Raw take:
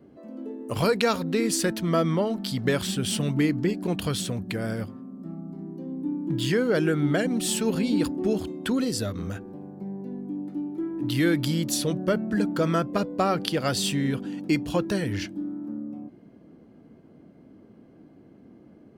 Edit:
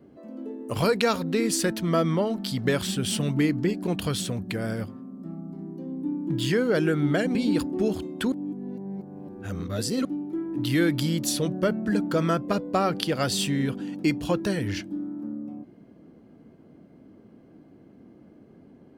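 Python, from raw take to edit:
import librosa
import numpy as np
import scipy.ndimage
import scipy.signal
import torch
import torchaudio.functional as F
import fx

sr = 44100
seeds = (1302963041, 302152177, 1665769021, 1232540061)

y = fx.edit(x, sr, fx.cut(start_s=7.35, length_s=0.45),
    fx.reverse_span(start_s=8.77, length_s=1.73), tone=tone)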